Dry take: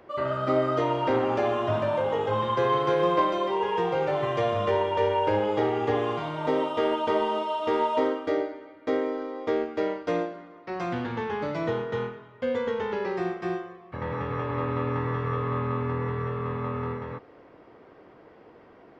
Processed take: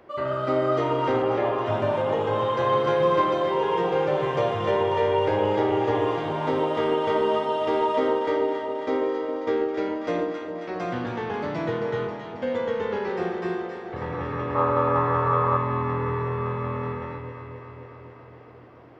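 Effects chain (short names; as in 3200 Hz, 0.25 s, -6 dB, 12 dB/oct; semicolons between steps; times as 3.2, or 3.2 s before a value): 1.22–1.66 LPF 2800 Hz; 14.55–15.57 band shelf 870 Hz +10 dB; on a send: echo with dull and thin repeats by turns 0.135 s, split 1000 Hz, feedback 84%, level -6 dB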